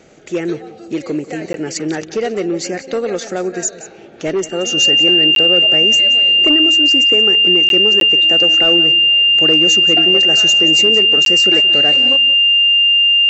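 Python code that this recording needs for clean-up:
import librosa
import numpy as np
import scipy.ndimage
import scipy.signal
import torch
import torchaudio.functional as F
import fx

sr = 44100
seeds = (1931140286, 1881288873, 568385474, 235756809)

y = fx.notch(x, sr, hz=2800.0, q=30.0)
y = fx.fix_interpolate(y, sr, at_s=(1.53, 5.35, 7.69, 8.0, 11.25), length_ms=12.0)
y = fx.fix_echo_inverse(y, sr, delay_ms=178, level_db=-15.5)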